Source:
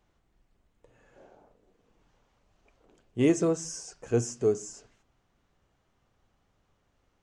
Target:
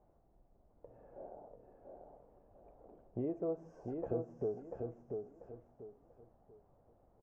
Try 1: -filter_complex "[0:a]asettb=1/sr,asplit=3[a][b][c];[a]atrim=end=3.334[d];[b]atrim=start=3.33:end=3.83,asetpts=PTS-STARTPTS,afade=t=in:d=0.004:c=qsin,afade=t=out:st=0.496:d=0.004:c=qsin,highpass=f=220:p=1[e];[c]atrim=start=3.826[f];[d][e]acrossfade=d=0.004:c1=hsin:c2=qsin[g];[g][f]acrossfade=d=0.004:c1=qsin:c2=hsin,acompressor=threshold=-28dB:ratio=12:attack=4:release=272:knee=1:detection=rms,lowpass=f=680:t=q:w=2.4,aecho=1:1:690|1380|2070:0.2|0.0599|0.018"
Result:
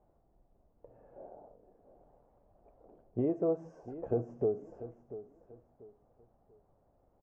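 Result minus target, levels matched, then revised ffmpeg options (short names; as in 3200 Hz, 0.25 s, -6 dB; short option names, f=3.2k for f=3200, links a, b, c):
compressor: peak gain reduction -7 dB; echo-to-direct -9.5 dB
-filter_complex "[0:a]asettb=1/sr,asplit=3[a][b][c];[a]atrim=end=3.334[d];[b]atrim=start=3.33:end=3.83,asetpts=PTS-STARTPTS,afade=t=in:d=0.004:c=qsin,afade=t=out:st=0.496:d=0.004:c=qsin,highpass=f=220:p=1[e];[c]atrim=start=3.826[f];[d][e]acrossfade=d=0.004:c1=hsin:c2=qsin[g];[g][f]acrossfade=d=0.004:c1=qsin:c2=hsin,acompressor=threshold=-35.5dB:ratio=12:attack=4:release=272:knee=1:detection=rms,lowpass=f=680:t=q:w=2.4,aecho=1:1:690|1380|2070|2760:0.596|0.179|0.0536|0.0161"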